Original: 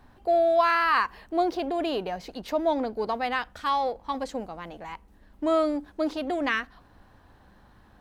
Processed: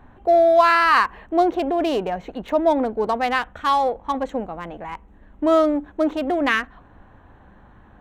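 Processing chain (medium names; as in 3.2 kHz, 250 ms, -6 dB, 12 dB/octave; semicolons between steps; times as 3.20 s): local Wiener filter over 9 samples; trim +7 dB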